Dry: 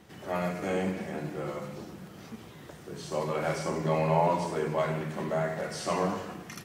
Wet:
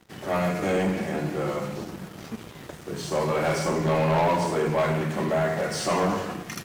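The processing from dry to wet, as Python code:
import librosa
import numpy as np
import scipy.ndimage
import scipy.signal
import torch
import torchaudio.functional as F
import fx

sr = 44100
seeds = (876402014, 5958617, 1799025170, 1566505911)

y = fx.leveller(x, sr, passes=3)
y = y * librosa.db_to_amplitude(-3.5)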